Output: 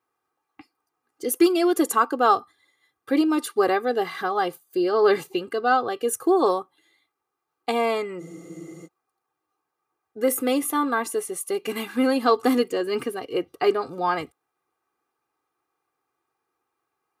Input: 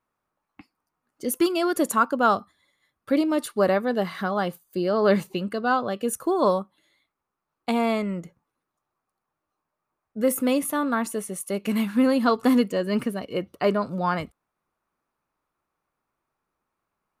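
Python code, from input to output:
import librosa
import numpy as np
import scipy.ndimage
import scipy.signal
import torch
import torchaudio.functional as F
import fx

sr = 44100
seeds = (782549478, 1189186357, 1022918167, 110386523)

y = scipy.signal.sosfilt(scipy.signal.butter(2, 150.0, 'highpass', fs=sr, output='sos'), x)
y = y + 0.83 * np.pad(y, (int(2.5 * sr / 1000.0), 0))[:len(y)]
y = fx.spec_freeze(y, sr, seeds[0], at_s=8.23, hold_s=0.63)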